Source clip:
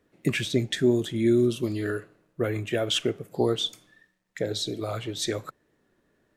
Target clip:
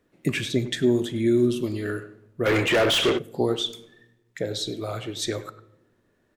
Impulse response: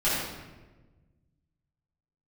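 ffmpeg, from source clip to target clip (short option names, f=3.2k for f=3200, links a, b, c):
-filter_complex "[0:a]asplit=2[a][b];[b]adelay=100,highpass=300,lowpass=3.4k,asoftclip=type=hard:threshold=-18.5dB,volume=-14dB[c];[a][c]amix=inputs=2:normalize=0,asplit=2[d][e];[1:a]atrim=start_sample=2205,asetrate=66150,aresample=44100[f];[e][f]afir=irnorm=-1:irlink=0,volume=-25dB[g];[d][g]amix=inputs=2:normalize=0,asplit=3[h][i][j];[h]afade=t=out:st=2.45:d=0.02[k];[i]asplit=2[l][m];[m]highpass=f=720:p=1,volume=29dB,asoftclip=type=tanh:threshold=-12.5dB[n];[l][n]amix=inputs=2:normalize=0,lowpass=f=3k:p=1,volume=-6dB,afade=t=in:st=2.45:d=0.02,afade=t=out:st=3.17:d=0.02[o];[j]afade=t=in:st=3.17:d=0.02[p];[k][o][p]amix=inputs=3:normalize=0"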